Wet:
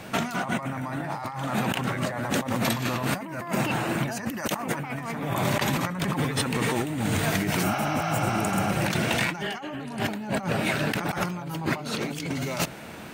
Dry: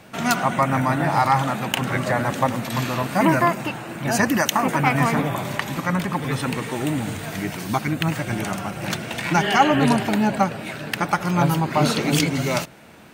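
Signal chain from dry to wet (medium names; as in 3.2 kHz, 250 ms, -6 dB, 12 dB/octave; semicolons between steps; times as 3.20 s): compressor with a negative ratio -29 dBFS, ratio -1; spectral replace 7.66–8.64 s, 580–6600 Hz after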